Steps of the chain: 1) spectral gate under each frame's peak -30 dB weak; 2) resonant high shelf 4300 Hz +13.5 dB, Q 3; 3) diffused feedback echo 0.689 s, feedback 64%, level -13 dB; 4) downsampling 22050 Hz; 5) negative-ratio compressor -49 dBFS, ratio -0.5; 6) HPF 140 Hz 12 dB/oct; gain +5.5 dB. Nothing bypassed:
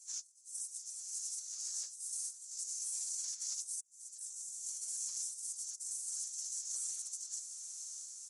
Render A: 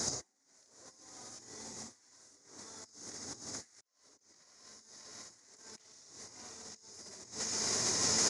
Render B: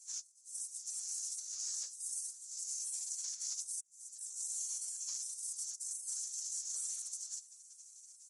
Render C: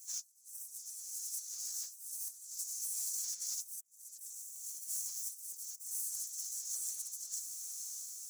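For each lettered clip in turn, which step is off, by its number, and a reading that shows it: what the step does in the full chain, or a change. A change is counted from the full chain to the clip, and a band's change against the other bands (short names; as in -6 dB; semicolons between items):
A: 1, crest factor change +7.5 dB; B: 3, momentary loudness spread change +2 LU; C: 4, momentary loudness spread change +3 LU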